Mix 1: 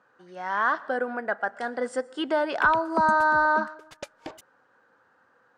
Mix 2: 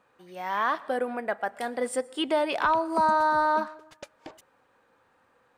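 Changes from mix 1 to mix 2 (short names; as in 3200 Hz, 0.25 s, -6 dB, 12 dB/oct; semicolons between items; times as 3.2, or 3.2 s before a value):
speech: remove speaker cabinet 110–7000 Hz, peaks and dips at 1500 Hz +9 dB, 2400 Hz -8 dB, 3600 Hz -5 dB; background -5.0 dB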